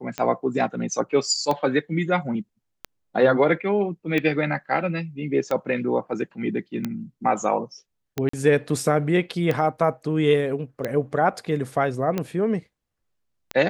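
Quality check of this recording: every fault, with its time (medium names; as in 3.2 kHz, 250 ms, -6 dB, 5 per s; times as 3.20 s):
tick 45 rpm -12 dBFS
8.29–8.33 s: dropout 44 ms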